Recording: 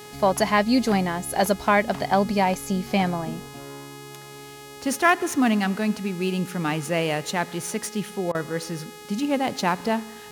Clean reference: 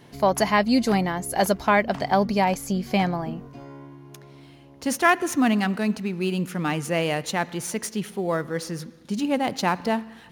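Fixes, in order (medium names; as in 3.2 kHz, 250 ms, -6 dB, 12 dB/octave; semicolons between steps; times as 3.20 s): de-hum 418.9 Hz, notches 33; interpolate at 8.32 s, 26 ms; expander -33 dBFS, range -21 dB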